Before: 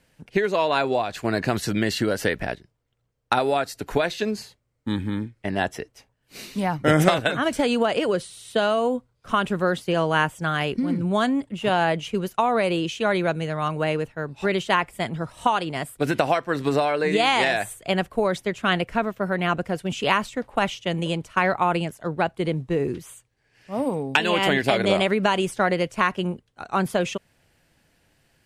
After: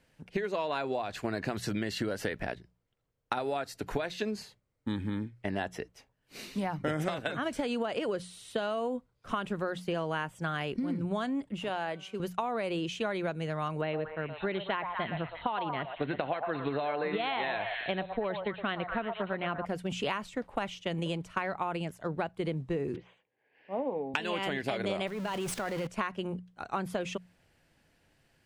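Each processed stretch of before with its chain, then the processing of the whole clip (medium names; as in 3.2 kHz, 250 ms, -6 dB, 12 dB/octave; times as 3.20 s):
11.64–12.20 s: high-pass 91 Hz + peaking EQ 130 Hz -5.5 dB 2.2 oct + feedback comb 190 Hz, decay 1.7 s, mix 50%
13.81–19.66 s: Chebyshev low-pass 4.2 kHz, order 10 + repeats whose band climbs or falls 117 ms, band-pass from 800 Hz, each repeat 0.7 oct, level -4.5 dB
22.96–24.14 s: cabinet simulation 270–2900 Hz, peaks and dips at 500 Hz +4 dB, 810 Hz +3 dB, 1.3 kHz -9 dB + doubling 16 ms -14 dB
25.07–25.87 s: jump at every zero crossing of -23.5 dBFS + level held to a coarse grid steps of 14 dB
whole clip: treble shelf 5.9 kHz -5.5 dB; hum notches 60/120/180 Hz; compression 5:1, threshold -25 dBFS; trim -4 dB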